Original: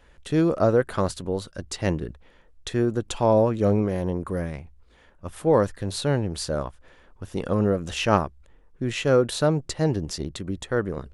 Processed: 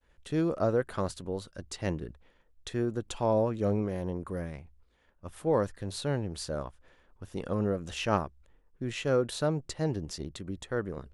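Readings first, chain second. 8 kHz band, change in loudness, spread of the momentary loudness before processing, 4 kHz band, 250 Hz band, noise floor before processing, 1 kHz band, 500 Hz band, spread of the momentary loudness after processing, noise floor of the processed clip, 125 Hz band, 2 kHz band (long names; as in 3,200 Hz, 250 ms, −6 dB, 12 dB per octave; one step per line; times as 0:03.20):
−7.5 dB, −7.5 dB, 14 LU, −7.5 dB, −7.5 dB, −56 dBFS, −7.5 dB, −7.5 dB, 14 LU, −67 dBFS, −7.5 dB, −7.5 dB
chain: downward expander −50 dBFS
level −7.5 dB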